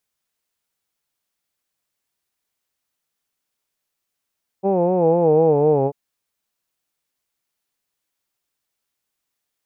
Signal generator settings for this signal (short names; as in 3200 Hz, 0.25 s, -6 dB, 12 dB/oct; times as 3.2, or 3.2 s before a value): formant vowel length 1.29 s, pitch 190 Hz, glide -5.5 st, vibrato 4 Hz, F1 470 Hz, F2 830 Hz